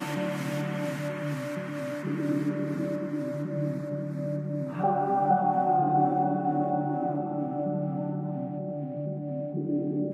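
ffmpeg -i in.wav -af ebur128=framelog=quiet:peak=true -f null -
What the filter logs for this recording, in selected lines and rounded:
Integrated loudness:
  I:         -29.3 LUFS
  Threshold: -39.3 LUFS
Loudness range:
  LRA:         5.0 LU
  Threshold: -48.7 LUFS
  LRA low:   -31.5 LUFS
  LRA high:  -26.5 LUFS
True peak:
  Peak:      -12.3 dBFS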